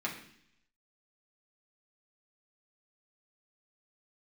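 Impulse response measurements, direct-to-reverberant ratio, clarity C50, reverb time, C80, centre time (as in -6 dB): -3.5 dB, 8.0 dB, 0.65 s, 11.0 dB, 24 ms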